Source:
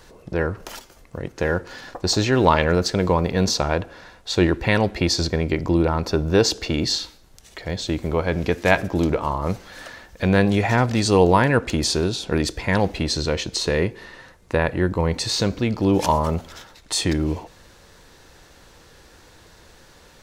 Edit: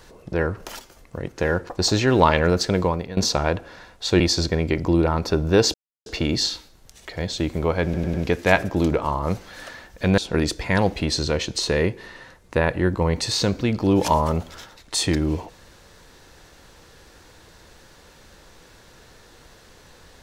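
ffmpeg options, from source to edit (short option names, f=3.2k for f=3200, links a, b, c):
-filter_complex "[0:a]asplit=9[a][b][c][d][e][f][g][h][i];[a]atrim=end=1.692[j];[b]atrim=start=1.938:end=3.42,asetpts=PTS-STARTPTS,afade=t=out:st=1.062:d=0.42:silence=0.141254[k];[c]atrim=start=3.42:end=4.452,asetpts=PTS-STARTPTS,afade=t=in:d=0.004:c=hsin:silence=0.141254[l];[d]atrim=start=5.008:end=6.55,asetpts=PTS-STARTPTS,afade=t=out:st=1.538:d=0.004:c=hsin,apad=pad_dur=0.32[m];[e]atrim=start=6.55:end=8.432,asetpts=PTS-STARTPTS,afade=t=in:d=0.004:c=hsin[n];[f]atrim=start=8.328:end=8.432[o];[g]atrim=start=8.328:end=8.432[p];[h]atrim=start=8.328:end=10.372[q];[i]atrim=start=12.158[r];[k][l]concat=n=2:v=0:a=1[s];[j][s]acrossfade=d=0.004:c1=hsin:c2=hsin[t];[m][n]concat=n=2:v=0:a=1[u];[t][u]acrossfade=d=0.004:c1=hsin:c2=hsin[v];[v][o]acrossfade=d=0.004:c1=hsin:c2=hsin[w];[w][p]acrossfade=d=0.004:c1=hsin:c2=hsin[x];[x][q]acrossfade=d=0.004:c1=hsin:c2=hsin[y];[y][r]acrossfade=d=0.004:c1=hsin:c2=hsin"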